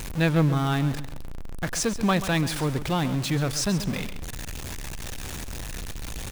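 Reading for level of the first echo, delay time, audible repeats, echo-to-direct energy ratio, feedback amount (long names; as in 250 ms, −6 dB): −13.0 dB, 134 ms, 2, −12.5 dB, 28%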